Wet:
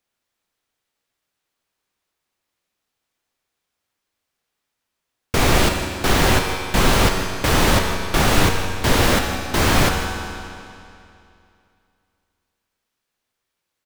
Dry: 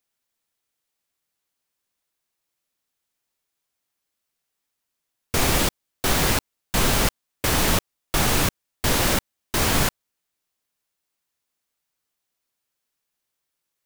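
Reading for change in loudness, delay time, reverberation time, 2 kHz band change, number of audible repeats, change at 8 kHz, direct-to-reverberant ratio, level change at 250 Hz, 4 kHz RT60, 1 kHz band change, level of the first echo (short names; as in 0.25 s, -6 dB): +3.5 dB, 0.161 s, 2.6 s, +5.5 dB, 1, 0.0 dB, 2.5 dB, +6.0 dB, 2.4 s, +6.5 dB, -13.0 dB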